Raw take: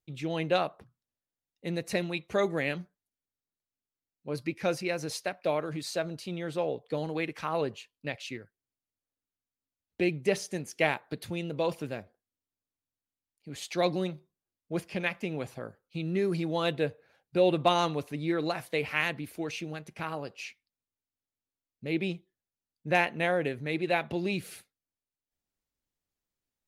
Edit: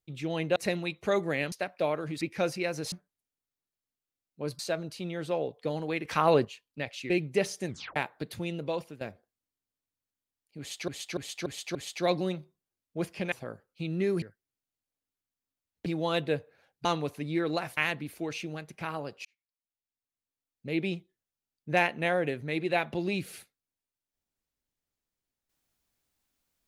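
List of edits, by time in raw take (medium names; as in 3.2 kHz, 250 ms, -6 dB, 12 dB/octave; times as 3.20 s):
0.56–1.83 s: delete
2.79–4.46 s: swap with 5.17–5.86 s
7.32–7.72 s: gain +7.5 dB
8.37–10.01 s: move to 16.37 s
10.58 s: tape stop 0.29 s
11.47–11.92 s: fade out, to -13.5 dB
13.50–13.79 s: loop, 5 plays
15.07–15.47 s: delete
17.36–17.78 s: delete
18.70–18.95 s: delete
20.43–21.88 s: fade in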